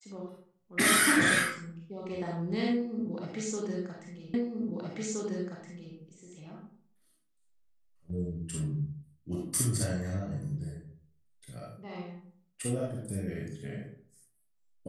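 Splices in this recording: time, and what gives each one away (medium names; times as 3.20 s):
4.34 s: repeat of the last 1.62 s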